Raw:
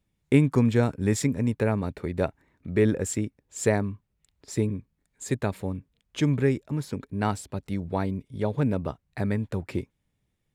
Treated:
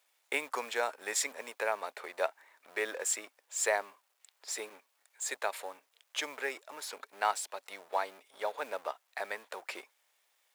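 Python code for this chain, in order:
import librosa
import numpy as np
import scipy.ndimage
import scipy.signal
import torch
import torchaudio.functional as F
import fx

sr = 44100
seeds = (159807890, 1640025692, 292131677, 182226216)

y = fx.law_mismatch(x, sr, coded='mu')
y = scipy.signal.sosfilt(scipy.signal.butter(4, 640.0, 'highpass', fs=sr, output='sos'), y)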